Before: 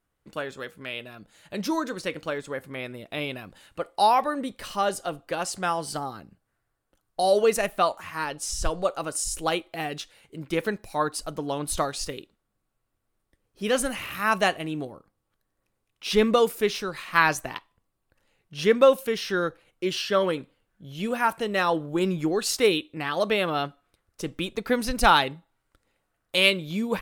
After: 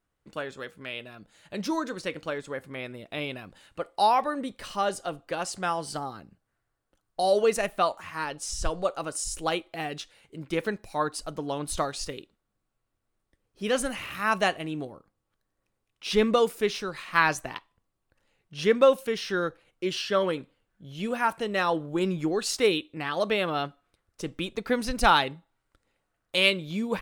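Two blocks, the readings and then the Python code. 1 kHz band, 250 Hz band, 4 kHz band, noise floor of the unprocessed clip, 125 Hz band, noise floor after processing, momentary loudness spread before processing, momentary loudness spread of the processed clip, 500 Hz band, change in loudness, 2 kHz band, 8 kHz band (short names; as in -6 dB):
-2.0 dB, -2.0 dB, -2.0 dB, -78 dBFS, -2.0 dB, -80 dBFS, 16 LU, 16 LU, -2.0 dB, -2.0 dB, -2.0 dB, -3.5 dB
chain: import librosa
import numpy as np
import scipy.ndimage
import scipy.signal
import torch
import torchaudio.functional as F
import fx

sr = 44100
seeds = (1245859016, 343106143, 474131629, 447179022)

y = fx.peak_eq(x, sr, hz=13000.0, db=-8.0, octaves=0.47)
y = y * 10.0 ** (-2.0 / 20.0)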